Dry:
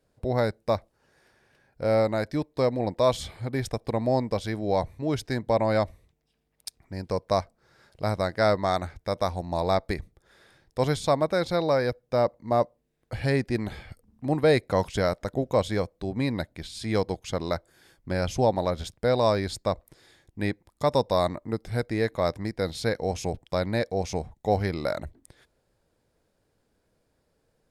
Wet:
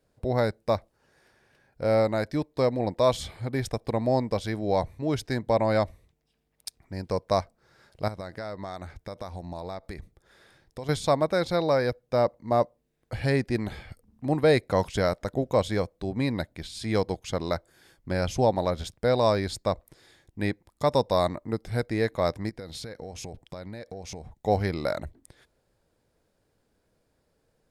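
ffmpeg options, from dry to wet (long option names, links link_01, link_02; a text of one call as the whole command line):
ffmpeg -i in.wav -filter_complex "[0:a]asettb=1/sr,asplit=3[link_01][link_02][link_03];[link_01]atrim=end=8.084[link_04];[link_02]atrim=start=8.08:end=10.89,asetpts=PTS-STARTPTS,afade=type=in:duration=0.004:curve=qsin,afade=type=out:start_time=2.806:duration=0.004:curve=qsin,acompressor=threshold=-33dB:ratio=6:attack=3.2:release=140:knee=1:detection=peak[link_05];[link_03]atrim=start=10.886[link_06];[link_04][link_05]acrossfade=duration=0.004:curve1=hsin:curve2=qsin[link_07];[link_07][link_06]acrossfade=duration=0.004:curve1=qsin:curve2=hsin,asettb=1/sr,asplit=3[link_08][link_09][link_10];[link_08]atrim=end=22.494[link_11];[link_09]atrim=start=22.49:end=24.38,asetpts=PTS-STARTPTS,afade=type=in:duration=0.004:curve=qsin,afade=type=out:start_time=1.886:duration=0.004:curve=qsin,acompressor=threshold=-34dB:ratio=16:attack=3.2:release=140:knee=1:detection=peak[link_12];[link_10]atrim=start=24.376[link_13];[link_11][link_12]acrossfade=duration=0.004:curve1=hsin:curve2=qsin[link_14];[link_14][link_13]acrossfade=duration=0.004:curve1=qsin:curve2=hsin" out.wav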